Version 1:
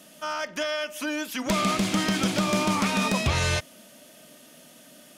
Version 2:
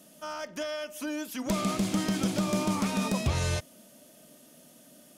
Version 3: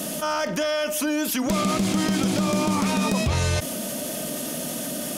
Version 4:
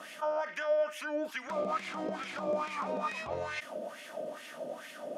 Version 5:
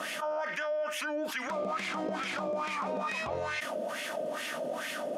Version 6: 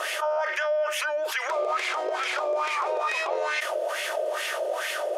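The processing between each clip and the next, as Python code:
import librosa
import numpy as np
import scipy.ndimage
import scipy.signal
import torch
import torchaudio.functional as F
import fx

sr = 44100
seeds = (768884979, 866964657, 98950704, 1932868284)

y1 = fx.peak_eq(x, sr, hz=2200.0, db=-8.0, octaves=2.7)
y1 = y1 * 10.0 ** (-2.0 / 20.0)
y2 = fx.env_flatten(y1, sr, amount_pct=70)
y2 = y2 * 10.0 ** (2.5 / 20.0)
y3 = fx.wah_lfo(y2, sr, hz=2.3, low_hz=520.0, high_hz=2200.0, q=3.4)
y4 = fx.env_flatten(y3, sr, amount_pct=70)
y4 = y4 * 10.0 ** (-5.0 / 20.0)
y5 = fx.brickwall_highpass(y4, sr, low_hz=340.0)
y5 = y5 * 10.0 ** (7.0 / 20.0)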